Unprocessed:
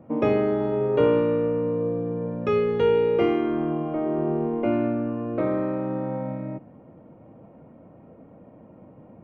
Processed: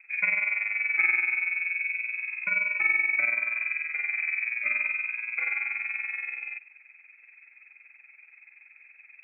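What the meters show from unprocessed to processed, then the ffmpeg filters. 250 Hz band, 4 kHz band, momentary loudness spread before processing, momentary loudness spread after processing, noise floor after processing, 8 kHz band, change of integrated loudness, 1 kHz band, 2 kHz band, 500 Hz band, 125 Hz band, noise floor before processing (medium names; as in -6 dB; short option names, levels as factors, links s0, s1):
under -30 dB, under -40 dB, 9 LU, 8 LU, -58 dBFS, no reading, -1.5 dB, -13.0 dB, +17.5 dB, -33.0 dB, under -30 dB, -50 dBFS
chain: -af "tremolo=f=21:d=0.667,lowpass=f=2300:t=q:w=0.5098,lowpass=f=2300:t=q:w=0.6013,lowpass=f=2300:t=q:w=0.9,lowpass=f=2300:t=q:w=2.563,afreqshift=-2700,volume=0.794"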